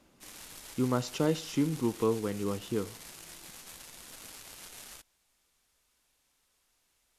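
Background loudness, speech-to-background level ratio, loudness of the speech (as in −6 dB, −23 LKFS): −46.5 LKFS, 14.5 dB, −32.0 LKFS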